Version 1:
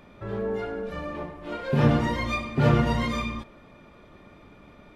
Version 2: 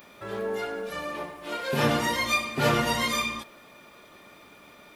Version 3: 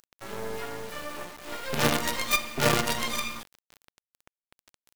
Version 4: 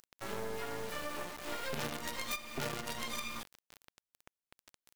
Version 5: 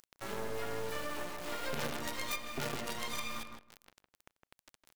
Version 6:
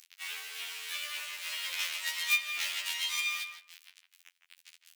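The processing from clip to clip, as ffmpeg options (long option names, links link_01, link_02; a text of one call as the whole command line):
ffmpeg -i in.wav -af "aemphasis=mode=production:type=riaa,volume=2dB" out.wav
ffmpeg -i in.wav -af "acrusher=bits=4:dc=4:mix=0:aa=0.000001" out.wav
ffmpeg -i in.wav -af "acompressor=threshold=-32dB:ratio=16,volume=-1dB" out.wav
ffmpeg -i in.wav -filter_complex "[0:a]asplit=2[link_01][link_02];[link_02]adelay=159,lowpass=frequency=1900:poles=1,volume=-5dB,asplit=2[link_03][link_04];[link_04]adelay=159,lowpass=frequency=1900:poles=1,volume=0.16,asplit=2[link_05][link_06];[link_06]adelay=159,lowpass=frequency=1900:poles=1,volume=0.16[link_07];[link_01][link_03][link_05][link_07]amix=inputs=4:normalize=0" out.wav
ffmpeg -i in.wav -af "highpass=frequency=2500:width_type=q:width=1.7,afftfilt=real='re*2*eq(mod(b,4),0)':imag='im*2*eq(mod(b,4),0)':win_size=2048:overlap=0.75,volume=8.5dB" out.wav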